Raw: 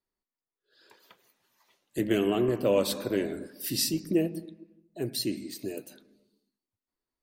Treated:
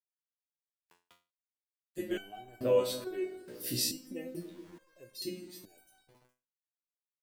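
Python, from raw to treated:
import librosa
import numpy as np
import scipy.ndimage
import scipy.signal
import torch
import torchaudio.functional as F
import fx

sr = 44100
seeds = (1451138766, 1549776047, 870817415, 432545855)

y = fx.peak_eq(x, sr, hz=590.0, db=3.0, octaves=0.52)
y = fx.echo_wet_lowpass(y, sr, ms=144, feedback_pct=76, hz=410.0, wet_db=-16.0)
y = fx.rev_schroeder(y, sr, rt60_s=0.37, comb_ms=27, drr_db=17.0)
y = np.where(np.abs(y) >= 10.0 ** (-48.5 / 20.0), y, 0.0)
y = fx.resonator_held(y, sr, hz=2.3, low_hz=61.0, high_hz=760.0)
y = F.gain(torch.from_numpy(y), 4.0).numpy()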